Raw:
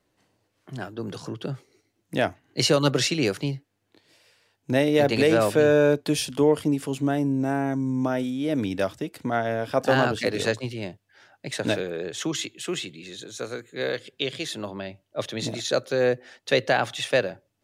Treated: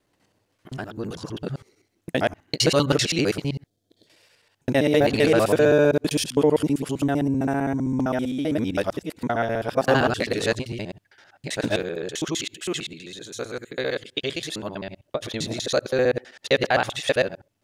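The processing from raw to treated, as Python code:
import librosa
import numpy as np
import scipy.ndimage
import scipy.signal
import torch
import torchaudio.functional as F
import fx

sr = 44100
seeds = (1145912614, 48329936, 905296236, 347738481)

y = fx.local_reverse(x, sr, ms=65.0)
y = fx.spec_box(y, sr, start_s=3.66, length_s=0.41, low_hz=750.0, high_hz=3100.0, gain_db=-14)
y = F.gain(torch.from_numpy(y), 1.5).numpy()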